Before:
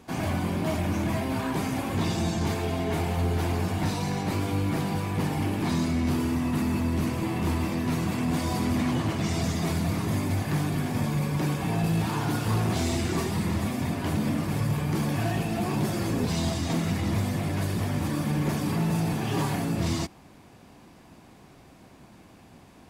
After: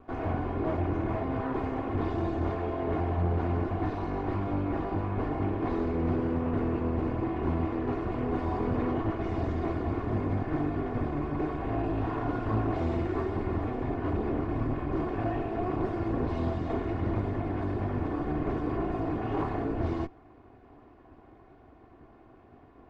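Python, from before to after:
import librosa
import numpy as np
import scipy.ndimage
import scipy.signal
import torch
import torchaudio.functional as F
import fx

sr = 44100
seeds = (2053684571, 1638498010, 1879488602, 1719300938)

y = fx.lower_of_two(x, sr, delay_ms=2.8)
y = scipy.signal.sosfilt(scipy.signal.butter(2, 1300.0, 'lowpass', fs=sr, output='sos'), y)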